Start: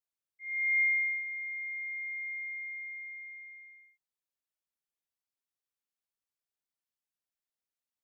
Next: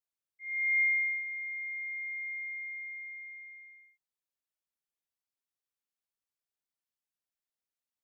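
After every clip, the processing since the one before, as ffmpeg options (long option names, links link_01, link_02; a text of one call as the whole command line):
ffmpeg -i in.wav -af anull out.wav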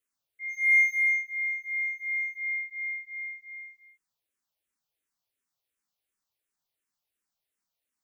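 ffmpeg -i in.wav -filter_complex "[0:a]asplit=2[link_01][link_02];[link_02]asoftclip=type=hard:threshold=-36dB,volume=-11dB[link_03];[link_01][link_03]amix=inputs=2:normalize=0,asplit=2[link_04][link_05];[link_05]afreqshift=-2.8[link_06];[link_04][link_06]amix=inputs=2:normalize=1,volume=7.5dB" out.wav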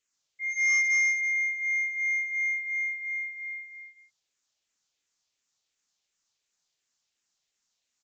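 ffmpeg -i in.wav -af "crystalizer=i=4:c=0,aecho=1:1:130:0.562,aresample=16000,asoftclip=type=tanh:threshold=-21.5dB,aresample=44100" out.wav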